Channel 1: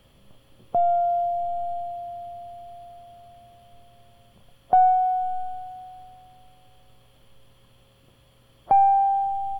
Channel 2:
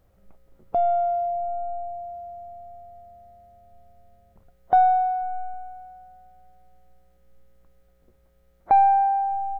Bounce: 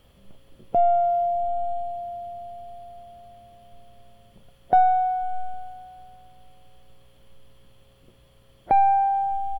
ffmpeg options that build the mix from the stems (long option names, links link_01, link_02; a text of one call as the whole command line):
ffmpeg -i stem1.wav -i stem2.wav -filter_complex "[0:a]volume=-1.5dB[link_01];[1:a]adelay=0.4,volume=0.5dB[link_02];[link_01][link_02]amix=inputs=2:normalize=0" out.wav